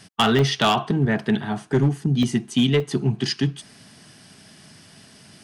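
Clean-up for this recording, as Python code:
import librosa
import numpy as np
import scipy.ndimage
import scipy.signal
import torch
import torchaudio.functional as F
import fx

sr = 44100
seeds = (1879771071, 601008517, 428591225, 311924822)

y = fx.fix_declip(x, sr, threshold_db=-12.0)
y = fx.fix_interpolate(y, sr, at_s=(0.39, 1.19, 2.23, 2.8), length_ms=1.6)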